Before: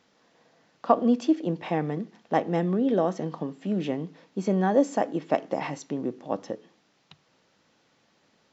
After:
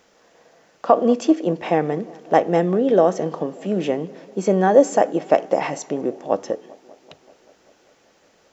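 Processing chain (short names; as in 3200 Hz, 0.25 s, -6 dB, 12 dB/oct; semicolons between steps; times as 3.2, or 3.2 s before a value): graphic EQ 125/250/1000/2000/4000 Hz -12/-9/-6/-4/-9 dB; tape echo 0.195 s, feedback 81%, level -22 dB, low-pass 1800 Hz; maximiser +15 dB; gain -1 dB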